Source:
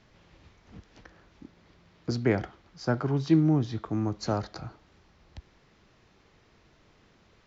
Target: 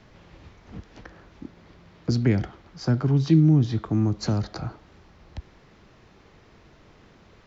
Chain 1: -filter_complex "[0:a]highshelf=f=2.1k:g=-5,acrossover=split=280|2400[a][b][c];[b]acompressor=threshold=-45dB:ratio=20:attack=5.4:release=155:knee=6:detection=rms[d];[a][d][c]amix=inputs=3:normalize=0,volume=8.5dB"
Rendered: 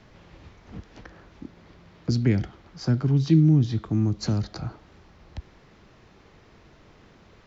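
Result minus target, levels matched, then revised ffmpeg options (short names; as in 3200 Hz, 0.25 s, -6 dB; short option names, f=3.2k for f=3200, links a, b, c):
compressor: peak gain reduction +6 dB
-filter_complex "[0:a]highshelf=f=2.1k:g=-5,acrossover=split=280|2400[a][b][c];[b]acompressor=threshold=-38.5dB:ratio=20:attack=5.4:release=155:knee=6:detection=rms[d];[a][d][c]amix=inputs=3:normalize=0,volume=8.5dB"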